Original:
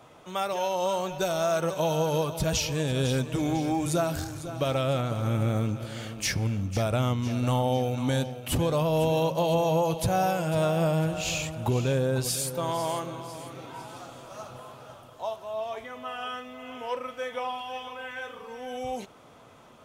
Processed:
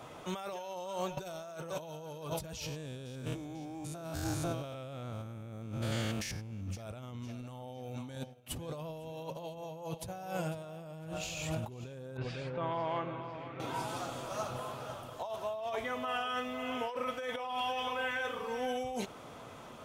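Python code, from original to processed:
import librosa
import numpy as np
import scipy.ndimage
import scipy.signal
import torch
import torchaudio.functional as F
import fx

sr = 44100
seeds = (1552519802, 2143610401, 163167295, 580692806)

y = fx.spec_steps(x, sr, hold_ms=100, at=(2.65, 6.65), fade=0.02)
y = fx.upward_expand(y, sr, threshold_db=-40.0, expansion=2.5, at=(8.15, 10.64))
y = fx.ladder_lowpass(y, sr, hz=2800.0, resonance_pct=35, at=(12.17, 13.6))
y = fx.edit(y, sr, fx.fade_out_to(start_s=0.68, length_s=0.49, floor_db=-13.5), tone=tone)
y = fx.over_compress(y, sr, threshold_db=-37.0, ratio=-1.0)
y = F.gain(torch.from_numpy(y), -3.0).numpy()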